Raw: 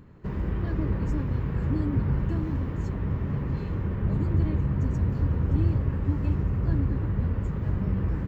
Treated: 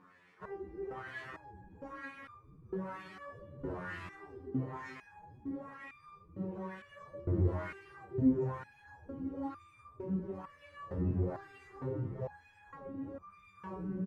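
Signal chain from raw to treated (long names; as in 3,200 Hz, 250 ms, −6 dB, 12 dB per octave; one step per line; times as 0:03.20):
variable-slope delta modulation 64 kbit/s
dynamic equaliser 250 Hz, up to −5 dB, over −46 dBFS, Q 2.6
auto-filter band-pass sine 1.8 Hz 280–2,400 Hz
phase-vocoder stretch with locked phases 1.7×
slap from a distant wall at 75 metres, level −27 dB
step-sequenced resonator 2.2 Hz 90–1,200 Hz
level +17 dB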